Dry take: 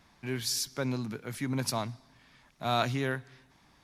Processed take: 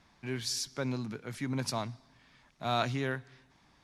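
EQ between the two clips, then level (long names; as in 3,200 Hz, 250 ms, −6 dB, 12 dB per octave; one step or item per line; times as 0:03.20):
low-pass filter 8,800 Hz 12 dB per octave
−2.0 dB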